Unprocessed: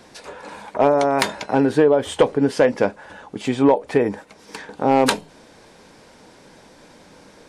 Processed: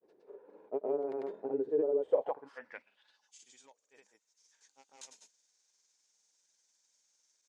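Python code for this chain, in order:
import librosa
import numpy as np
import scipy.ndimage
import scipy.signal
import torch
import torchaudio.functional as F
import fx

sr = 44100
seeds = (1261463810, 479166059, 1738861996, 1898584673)

y = fx.granulator(x, sr, seeds[0], grain_ms=100.0, per_s=20.0, spray_ms=100.0, spread_st=0)
y = fx.filter_sweep_bandpass(y, sr, from_hz=400.0, to_hz=6600.0, start_s=2.0, end_s=3.32, q=5.3)
y = F.gain(torch.from_numpy(y), -8.0).numpy()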